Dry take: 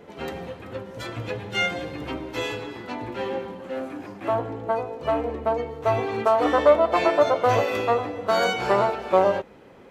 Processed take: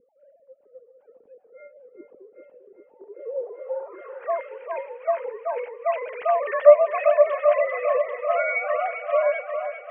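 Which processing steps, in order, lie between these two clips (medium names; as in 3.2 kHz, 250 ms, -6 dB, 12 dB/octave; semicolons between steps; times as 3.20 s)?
formants replaced by sine waves; multi-head delay 396 ms, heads first and second, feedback 43%, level -10 dB; low-pass sweep 250 Hz -> 2.4 kHz, 2.92–4.48 s; trim -1.5 dB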